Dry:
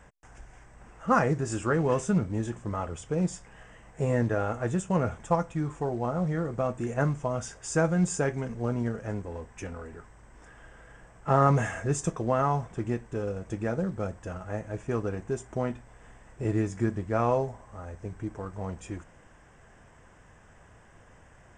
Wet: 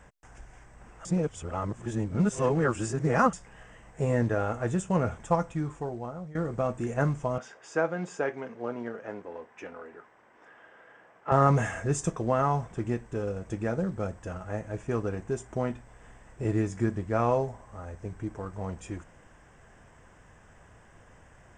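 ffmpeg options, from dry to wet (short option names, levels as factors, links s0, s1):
-filter_complex "[0:a]asettb=1/sr,asplit=3[s0][s1][s2];[s0]atrim=end=7.384[s3];[s1]atrim=start=7.38:end=11.32,asetpts=PTS-STARTPTS,afade=t=in:d=0.004:c=qsin,afade=t=out:st=3.936:d=0.004:c=qsin,highpass=340,lowpass=3300[s4];[s2]atrim=start=11.316[s5];[s3][s4]acrossfade=d=0.004:c1=hsin:c2=qsin[s6];[s6][s5]acrossfade=d=0.004:c1=qsin:c2=hsin,asplit=4[s7][s8][s9][s10];[s7]atrim=end=1.052[s11];[s8]atrim=start=1.048:end=3.332,asetpts=PTS-STARTPTS,areverse[s12];[s9]atrim=start=3.328:end=6.35,asetpts=PTS-STARTPTS,afade=t=out:st=2.172:d=0.85:silence=0.133352[s13];[s10]atrim=start=6.35,asetpts=PTS-STARTPTS,afade=t=in:d=0.004:c=hsin:silence=0.133352[s14];[s11][s12]acrossfade=d=0.004:c1=hsin:c2=hsin[s15];[s13][s14]concat=n=2:v=0:a=1[s16];[s15][s16]acrossfade=d=0.004:c1=hsin:c2=hsin"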